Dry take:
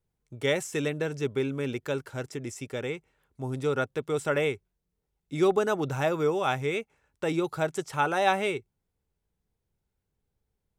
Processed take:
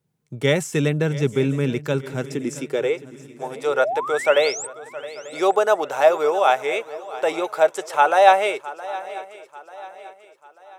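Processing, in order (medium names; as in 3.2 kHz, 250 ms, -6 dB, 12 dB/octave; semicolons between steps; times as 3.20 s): painted sound rise, 3.54–4.67 s, 210–8700 Hz -37 dBFS; high-pass sweep 150 Hz -> 620 Hz, 2.11–3.11 s; shuffle delay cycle 890 ms, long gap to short 3:1, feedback 40%, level -17 dB; trim +6 dB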